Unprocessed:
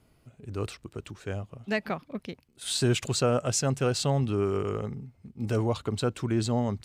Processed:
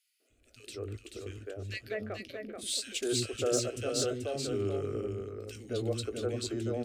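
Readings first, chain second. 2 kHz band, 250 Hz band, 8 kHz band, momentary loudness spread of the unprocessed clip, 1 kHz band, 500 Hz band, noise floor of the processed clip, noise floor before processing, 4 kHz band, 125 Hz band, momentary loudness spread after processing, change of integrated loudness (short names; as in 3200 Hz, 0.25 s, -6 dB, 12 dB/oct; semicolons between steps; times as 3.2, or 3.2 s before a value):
-6.0 dB, -7.0 dB, -2.5 dB, 14 LU, -11.0 dB, -3.5 dB, -71 dBFS, -65 dBFS, -2.5 dB, -10.0 dB, 12 LU, -5.5 dB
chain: on a send: echo 0.434 s -5.5 dB; on the sum: de-esser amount 50%; fixed phaser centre 390 Hz, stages 4; doubler 19 ms -12.5 dB; three bands offset in time highs, mids, lows 0.2/0.3 s, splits 310/1900 Hz; gain -2 dB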